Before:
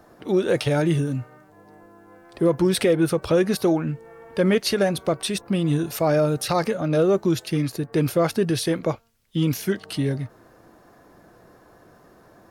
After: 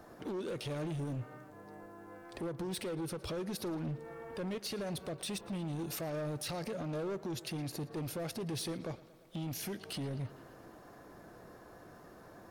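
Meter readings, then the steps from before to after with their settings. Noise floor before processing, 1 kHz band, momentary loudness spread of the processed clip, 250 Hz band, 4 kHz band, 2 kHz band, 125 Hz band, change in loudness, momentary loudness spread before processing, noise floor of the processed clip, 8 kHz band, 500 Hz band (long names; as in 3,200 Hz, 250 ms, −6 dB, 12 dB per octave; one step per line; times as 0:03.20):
−54 dBFS, −16.0 dB, 16 LU, −17.0 dB, −13.0 dB, −16.5 dB, −15.0 dB, −17.0 dB, 8 LU, −56 dBFS, −12.0 dB, −18.5 dB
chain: dynamic equaliser 1,200 Hz, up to −6 dB, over −38 dBFS, Q 0.96
downward compressor 6 to 1, threshold −28 dBFS, peak gain reduction 12 dB
brickwall limiter −26 dBFS, peak gain reduction 10 dB
gain into a clipping stage and back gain 32.5 dB
on a send: tape delay 113 ms, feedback 86%, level −16 dB, low-pass 5,300 Hz
on the sum: level −2.5 dB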